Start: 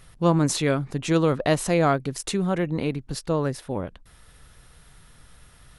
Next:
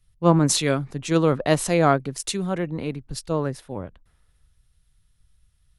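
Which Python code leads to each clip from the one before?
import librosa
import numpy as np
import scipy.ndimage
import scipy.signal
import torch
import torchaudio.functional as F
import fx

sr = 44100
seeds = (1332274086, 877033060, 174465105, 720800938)

y = fx.band_widen(x, sr, depth_pct=70)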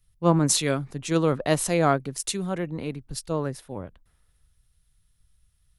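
y = fx.high_shelf(x, sr, hz=8900.0, db=7.5)
y = F.gain(torch.from_numpy(y), -3.0).numpy()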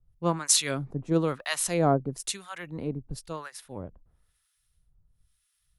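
y = fx.harmonic_tremolo(x, sr, hz=1.0, depth_pct=100, crossover_hz=980.0)
y = F.gain(torch.from_numpy(y), 1.5).numpy()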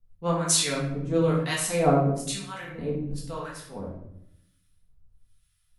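y = fx.room_shoebox(x, sr, seeds[0], volume_m3=170.0, walls='mixed', distance_m=1.6)
y = F.gain(torch.from_numpy(y), -4.0).numpy()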